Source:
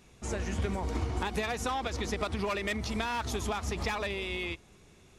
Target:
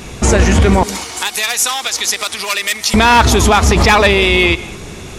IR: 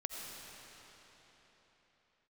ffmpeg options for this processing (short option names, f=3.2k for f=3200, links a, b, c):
-filter_complex "[0:a]asettb=1/sr,asplit=3[a][b][c];[a]atrim=end=0.834[d];[b]atrim=start=0.83:end=2.94,asetpts=PTS-STARTPTS,afade=t=in:d=0.004:c=qsin,afade=t=out:st=2.106:d=0.004:c=qsin,aderivative[e];[c]atrim=start=2.936[f];[d][e]acrossfade=d=0.004:c1=hsin:c2=qsin[g];[g][f]acrossfade=d=0.004:c1=qsin:c2=hsin,asplit=2[h][i];[1:a]atrim=start_sample=2205,atrim=end_sample=6174,asetrate=28665,aresample=44100[j];[i][j]afir=irnorm=-1:irlink=0,volume=-15dB[k];[h][k]amix=inputs=2:normalize=0,alimiter=level_in=28dB:limit=-1dB:release=50:level=0:latency=1,volume=-1dB"